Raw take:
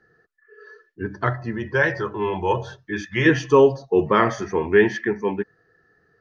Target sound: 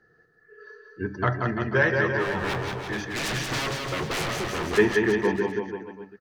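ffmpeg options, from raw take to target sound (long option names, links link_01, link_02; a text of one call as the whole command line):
ffmpeg -i in.wav -filter_complex "[0:a]acontrast=35,asplit=3[link_01][link_02][link_03];[link_01]afade=type=out:start_time=2.17:duration=0.02[link_04];[link_02]aeval=exprs='0.133*(abs(mod(val(0)/0.133+3,4)-2)-1)':channel_layout=same,afade=type=in:start_time=2.17:duration=0.02,afade=type=out:start_time=4.77:duration=0.02[link_05];[link_03]afade=type=in:start_time=4.77:duration=0.02[link_06];[link_04][link_05][link_06]amix=inputs=3:normalize=0,aecho=1:1:180|342|487.8|619|737.1:0.631|0.398|0.251|0.158|0.1,volume=-7dB" out.wav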